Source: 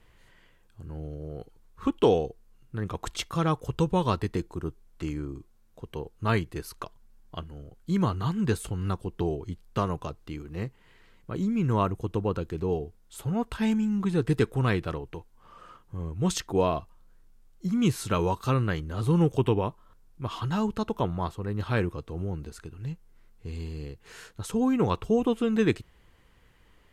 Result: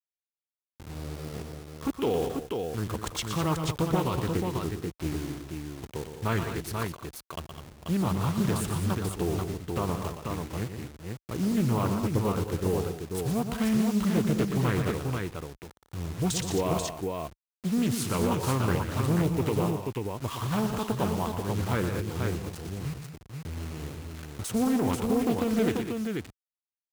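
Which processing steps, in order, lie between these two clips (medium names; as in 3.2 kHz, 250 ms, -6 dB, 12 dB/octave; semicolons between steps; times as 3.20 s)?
send-on-delta sampling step -37.5 dBFS; high-pass 42 Hz; treble shelf 5.1 kHz +6.5 dB; peak limiter -18.5 dBFS, peak gain reduction 9.5 dB; on a send: multi-tap echo 119/176/207/487 ms -8/-16.5/-10.5/-4.5 dB; on the sum: loudspeaker Doppler distortion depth 0.45 ms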